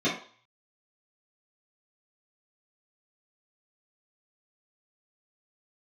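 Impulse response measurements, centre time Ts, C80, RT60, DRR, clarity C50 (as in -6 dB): 33 ms, 11.0 dB, 0.45 s, -10.5 dB, 5.0 dB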